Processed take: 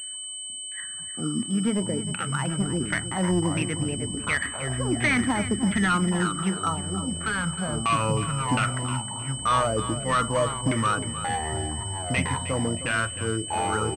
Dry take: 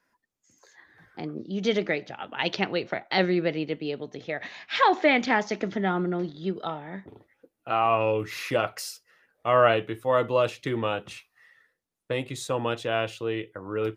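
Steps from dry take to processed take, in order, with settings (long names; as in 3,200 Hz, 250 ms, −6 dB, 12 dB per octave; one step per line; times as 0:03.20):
flat-topped bell 550 Hz −13 dB
brickwall limiter −18.5 dBFS, peak gain reduction 7.5 dB
auto-filter low-pass saw down 1.4 Hz 230–2,600 Hz
gain into a clipping stage and back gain 24.5 dB
delay with pitch and tempo change per echo 133 ms, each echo −6 semitones, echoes 3, each echo −6 dB
repeating echo 311 ms, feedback 27%, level −12.5 dB
steady tone 3,000 Hz −42 dBFS
switching amplifier with a slow clock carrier 8,200 Hz
level +6 dB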